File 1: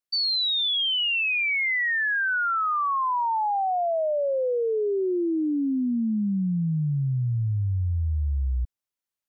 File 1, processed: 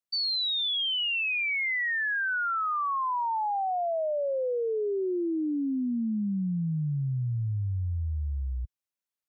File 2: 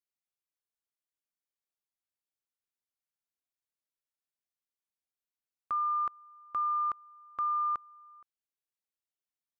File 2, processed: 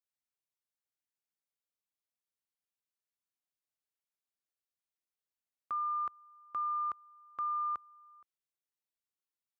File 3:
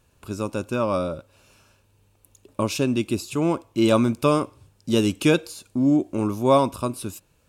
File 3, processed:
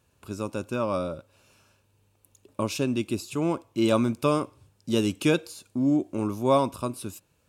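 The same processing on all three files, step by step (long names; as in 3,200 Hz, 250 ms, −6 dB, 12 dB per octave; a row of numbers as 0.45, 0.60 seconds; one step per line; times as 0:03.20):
high-pass filter 59 Hz 12 dB per octave
level −4 dB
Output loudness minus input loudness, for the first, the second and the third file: −4.0, −4.0, −4.0 LU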